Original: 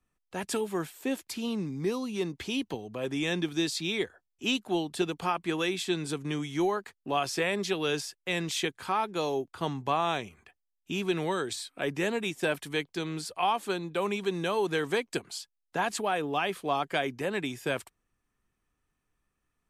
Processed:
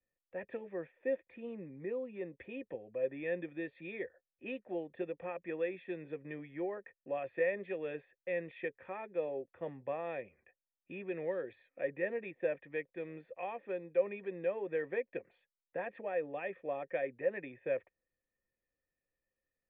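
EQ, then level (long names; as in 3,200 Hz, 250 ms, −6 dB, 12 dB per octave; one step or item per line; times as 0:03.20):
formant resonators in series e
high-frequency loss of the air 110 metres
notch filter 430 Hz, Q 12
+4.0 dB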